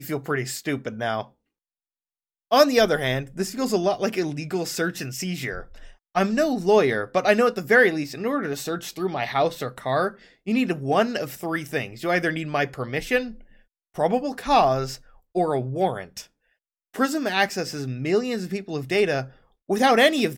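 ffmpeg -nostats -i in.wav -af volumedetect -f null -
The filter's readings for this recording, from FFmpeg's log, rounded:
mean_volume: -24.1 dB
max_volume: -4.1 dB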